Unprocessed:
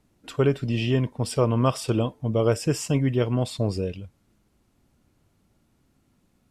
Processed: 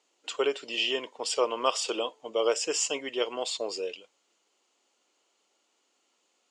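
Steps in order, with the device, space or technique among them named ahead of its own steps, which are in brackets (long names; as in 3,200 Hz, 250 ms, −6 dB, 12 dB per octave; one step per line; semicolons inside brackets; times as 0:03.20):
phone speaker on a table (loudspeaker in its box 440–8,100 Hz, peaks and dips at 630 Hz −4 dB, 1,600 Hz −4 dB, 3,000 Hz +8 dB, 4,500 Hz +4 dB, 6,900 Hz +10 dB)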